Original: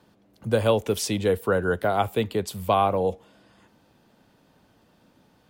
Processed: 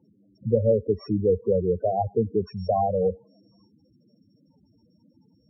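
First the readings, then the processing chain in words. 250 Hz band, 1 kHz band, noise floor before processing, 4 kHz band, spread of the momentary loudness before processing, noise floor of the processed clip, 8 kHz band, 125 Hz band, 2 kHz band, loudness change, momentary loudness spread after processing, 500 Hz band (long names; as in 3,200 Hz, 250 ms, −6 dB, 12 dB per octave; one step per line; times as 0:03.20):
0.0 dB, −3.5 dB, −62 dBFS, below −15 dB, 6 LU, −64 dBFS, below −40 dB, +1.0 dB, below −30 dB, −0.5 dB, 6 LU, +1.0 dB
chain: samples sorted by size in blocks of 8 samples
treble cut that deepens with the level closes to 770 Hz, closed at −19 dBFS
spectral peaks only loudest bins 8
level +2.5 dB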